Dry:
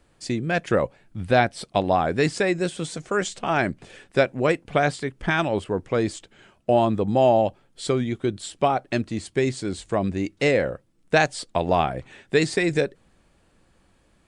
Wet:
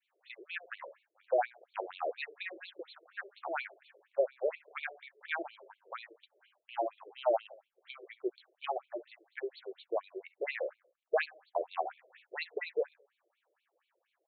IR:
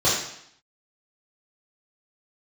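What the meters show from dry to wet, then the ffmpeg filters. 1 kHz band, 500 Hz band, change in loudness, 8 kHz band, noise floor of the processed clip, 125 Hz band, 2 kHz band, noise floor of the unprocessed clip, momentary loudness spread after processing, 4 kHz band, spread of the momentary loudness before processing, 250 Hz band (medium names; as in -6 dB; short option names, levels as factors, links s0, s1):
-14.5 dB, -13.5 dB, -14.5 dB, under -40 dB, -84 dBFS, under -40 dB, -14.0 dB, -62 dBFS, 17 LU, -16.5 dB, 9 LU, -25.5 dB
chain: -filter_complex "[0:a]adynamicequalizer=threshold=0.0178:dfrequency=1300:dqfactor=1.4:tfrequency=1300:tqfactor=1.4:attack=5:release=100:ratio=0.375:range=2:mode=cutabove:tftype=bell,aeval=exprs='0.531*(cos(1*acos(clip(val(0)/0.531,-1,1)))-cos(1*PI/2))+0.0841*(cos(4*acos(clip(val(0)/0.531,-1,1)))-cos(4*PI/2))+0.0473*(cos(6*acos(clip(val(0)/0.531,-1,1)))-cos(6*PI/2))':c=same,asplit=2[s0][s1];[s1]aecho=0:1:67|134|201:0.1|0.041|0.0168[s2];[s0][s2]amix=inputs=2:normalize=0,afftfilt=real='re*between(b*sr/1024,460*pow(3200/460,0.5+0.5*sin(2*PI*4.2*pts/sr))/1.41,460*pow(3200/460,0.5+0.5*sin(2*PI*4.2*pts/sr))*1.41)':imag='im*between(b*sr/1024,460*pow(3200/460,0.5+0.5*sin(2*PI*4.2*pts/sr))/1.41,460*pow(3200/460,0.5+0.5*sin(2*PI*4.2*pts/sr))*1.41)':win_size=1024:overlap=0.75,volume=0.398"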